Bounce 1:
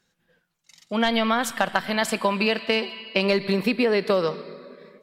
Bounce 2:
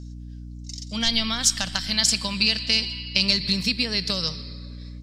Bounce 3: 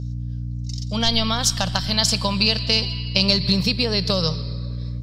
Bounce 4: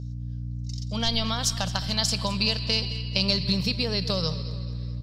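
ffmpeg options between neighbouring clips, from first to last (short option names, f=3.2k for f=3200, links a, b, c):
-af "firequalizer=gain_entry='entry(100,0);entry(350,-22);entry(5200,13);entry(12000,-8)':delay=0.05:min_phase=1,aeval=exprs='val(0)+0.00794*(sin(2*PI*60*n/s)+sin(2*PI*2*60*n/s)/2+sin(2*PI*3*60*n/s)/3+sin(2*PI*4*60*n/s)/4+sin(2*PI*5*60*n/s)/5)':c=same,volume=6dB"
-af "equalizer=f=125:t=o:w=1:g=10,equalizer=f=250:t=o:w=1:g=-6,equalizer=f=500:t=o:w=1:g=6,equalizer=f=1k:t=o:w=1:g=4,equalizer=f=2k:t=o:w=1:g=-8,equalizer=f=8k:t=o:w=1:g=-9,volume=5.5dB"
-af "aecho=1:1:217|434|651|868|1085:0.141|0.0735|0.0382|0.0199|0.0103,volume=-6dB"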